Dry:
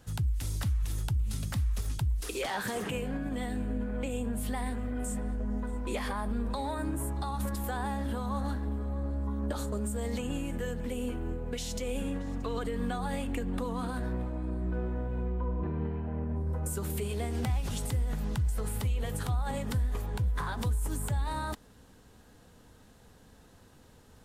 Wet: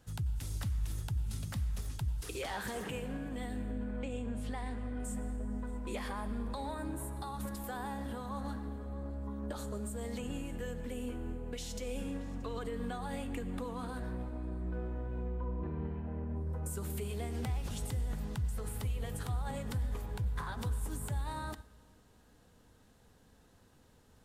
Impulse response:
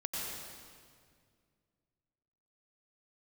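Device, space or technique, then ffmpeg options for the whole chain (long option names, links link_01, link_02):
keyed gated reverb: -filter_complex "[0:a]asettb=1/sr,asplit=3[link_01][link_02][link_03];[link_01]atrim=end=3.714[link_04];[link_02]atrim=start=3.71:end=5.05,asetpts=PTS-STARTPTS,afade=type=in:duration=0.004:curve=qsin,afade=type=out:start_time=1.336:duration=0.004:curve=qsin,lowpass=6400[link_05];[link_03]atrim=start=5.046[link_06];[link_04][link_05]acrossfade=duration=0.004:curve1=hsin:curve2=qsin[link_07];[link_07][link_06]acrossfade=duration=0.004:curve1=qsin:curve2=hsin,asplit=3[link_08][link_09][link_10];[1:a]atrim=start_sample=2205[link_11];[link_09][link_11]afir=irnorm=-1:irlink=0[link_12];[link_10]apad=whole_len=1069145[link_13];[link_12][link_13]sidechaingate=range=-11dB:threshold=-43dB:ratio=16:detection=peak,volume=-13dB[link_14];[link_08][link_14]amix=inputs=2:normalize=0,volume=-7dB"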